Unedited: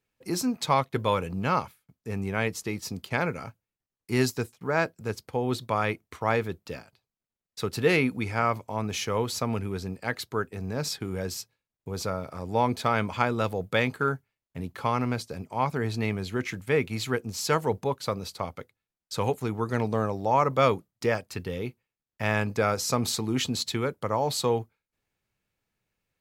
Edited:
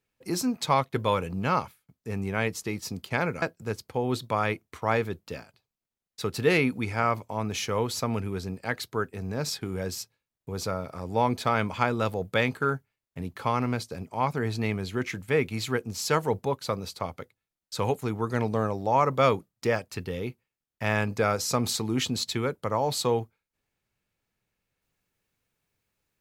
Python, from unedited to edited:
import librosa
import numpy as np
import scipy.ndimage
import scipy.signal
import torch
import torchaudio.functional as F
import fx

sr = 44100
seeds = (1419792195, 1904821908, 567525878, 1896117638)

y = fx.edit(x, sr, fx.cut(start_s=3.42, length_s=1.39), tone=tone)